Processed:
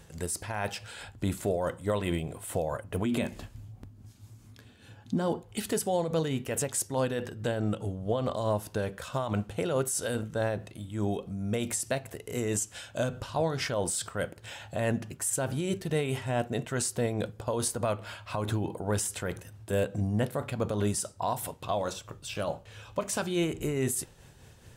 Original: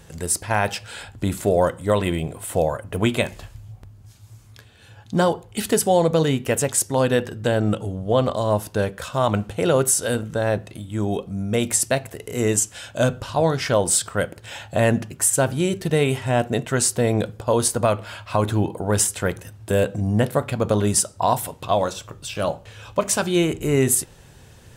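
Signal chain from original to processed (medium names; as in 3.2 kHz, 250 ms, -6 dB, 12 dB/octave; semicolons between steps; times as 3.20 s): 3.05–5.44 s: peaking EQ 250 Hz +11.5 dB 0.92 oct; peak limiter -13.5 dBFS, peak gain reduction 11 dB; tremolo 4.7 Hz, depth 38%; trim -5 dB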